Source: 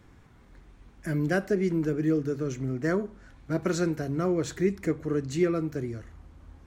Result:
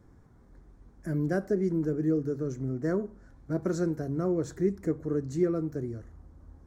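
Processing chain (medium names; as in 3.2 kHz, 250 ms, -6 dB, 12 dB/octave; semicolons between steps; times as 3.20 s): FFT filter 460 Hz 0 dB, 1.7 kHz -7 dB, 2.7 kHz -19 dB, 5.4 kHz -6 dB; trim -1.5 dB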